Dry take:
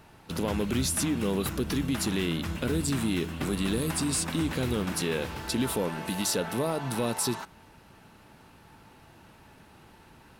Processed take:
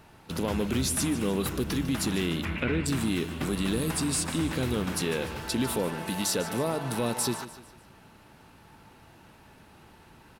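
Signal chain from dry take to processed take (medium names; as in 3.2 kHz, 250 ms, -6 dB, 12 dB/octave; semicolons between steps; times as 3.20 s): 2.45–2.86 s: resonant low-pass 2.3 kHz, resonance Q 3.7; feedback delay 149 ms, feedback 42%, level -14 dB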